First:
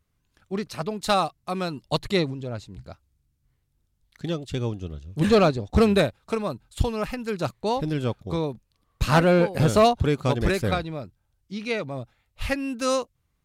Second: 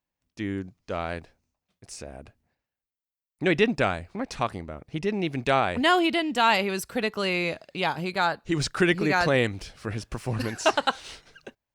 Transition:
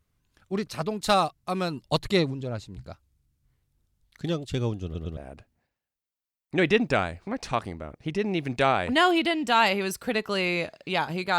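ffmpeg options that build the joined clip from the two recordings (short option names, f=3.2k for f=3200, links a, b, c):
-filter_complex "[0:a]apad=whole_dur=11.38,atrim=end=11.38,asplit=3[a][b][c];[a]atrim=end=4.952[d];[b]atrim=start=4.838:end=4.952[e];[c]atrim=start=4.838:end=4.952[f];[1:a]atrim=start=2.048:end=8.26[g];[d][e]acrossfade=d=0.004:c1=hsin:c2=hsin[h];[h][f]acrossfade=d=0.004:c1=hsin:c2=hsin[i];[i][g]acrossfade=d=0.004:c1=hsin:c2=hsin"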